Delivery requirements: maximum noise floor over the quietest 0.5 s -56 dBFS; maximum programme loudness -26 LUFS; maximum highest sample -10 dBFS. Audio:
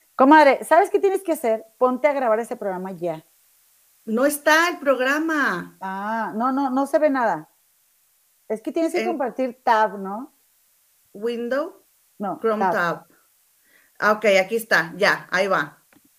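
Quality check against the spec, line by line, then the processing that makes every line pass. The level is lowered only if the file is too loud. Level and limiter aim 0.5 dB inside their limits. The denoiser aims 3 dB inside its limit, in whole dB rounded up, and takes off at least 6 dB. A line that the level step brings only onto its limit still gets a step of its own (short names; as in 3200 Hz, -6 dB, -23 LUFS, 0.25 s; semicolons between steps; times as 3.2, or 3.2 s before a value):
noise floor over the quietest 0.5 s -62 dBFS: OK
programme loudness -20.5 LUFS: fail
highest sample -3.0 dBFS: fail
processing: gain -6 dB; limiter -10.5 dBFS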